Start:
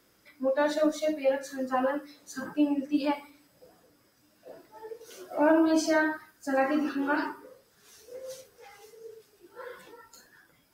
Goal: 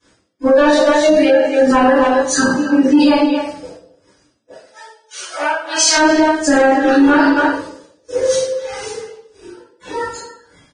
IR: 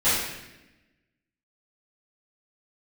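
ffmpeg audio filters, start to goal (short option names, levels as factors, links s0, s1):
-filter_complex "[0:a]asettb=1/sr,asplit=3[s0][s1][s2];[s0]atrim=end=9.064[s3];[s1]atrim=start=9.06:end=9.8,asetpts=PTS-STARTPTS,afade=t=in:d=0.004:c=qsin,afade=t=out:st=0.736:d=0.004:c=qsin,acompressor=threshold=0.00178:ratio=16[s4];[s2]atrim=start=9.796[s5];[s3][s4]acrossfade=d=0.004:c1=hsin:c2=qsin[s6];[s6][s5]acrossfade=d=0.004:c1=qsin:c2=hsin,tremolo=f=1.7:d=0.98,asplit=2[s7][s8];[s8]adelay=270,highpass=300,lowpass=3400,asoftclip=type=hard:threshold=0.0708,volume=0.282[s9];[s7][s9]amix=inputs=2:normalize=0,asoftclip=type=tanh:threshold=0.0794,asplit=3[s10][s11][s12];[s10]afade=t=out:st=4.51:d=0.02[s13];[s11]highpass=1500,afade=t=in:st=4.51:d=0.02,afade=t=out:st=5.96:d=0.02[s14];[s12]afade=t=in:st=5.96:d=0.02[s15];[s13][s14][s15]amix=inputs=3:normalize=0,agate=range=0.0224:threshold=0.00158:ratio=3:detection=peak[s16];[1:a]atrim=start_sample=2205,asetrate=83790,aresample=44100[s17];[s16][s17]afir=irnorm=-1:irlink=0,alimiter=level_in=9.44:limit=0.891:release=50:level=0:latency=1,volume=0.708" -ar 22050 -c:a libvorbis -b:a 16k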